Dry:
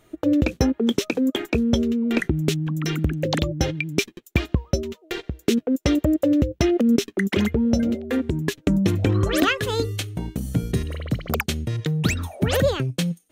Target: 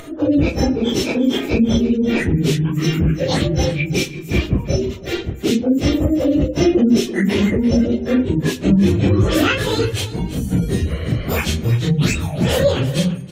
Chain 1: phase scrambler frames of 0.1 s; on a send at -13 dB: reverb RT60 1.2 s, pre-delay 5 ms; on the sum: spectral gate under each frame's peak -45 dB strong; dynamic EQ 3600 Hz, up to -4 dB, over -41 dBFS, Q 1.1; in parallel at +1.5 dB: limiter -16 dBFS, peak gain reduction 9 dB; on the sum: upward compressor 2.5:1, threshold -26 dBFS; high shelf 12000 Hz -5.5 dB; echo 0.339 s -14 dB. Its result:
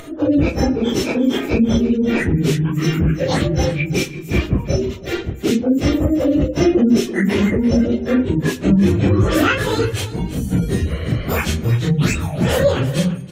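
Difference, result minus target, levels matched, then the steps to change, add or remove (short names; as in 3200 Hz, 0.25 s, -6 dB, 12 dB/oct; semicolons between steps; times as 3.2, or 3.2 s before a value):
4000 Hz band -2.5 dB
change: dynamic EQ 1400 Hz, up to -4 dB, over -41 dBFS, Q 1.1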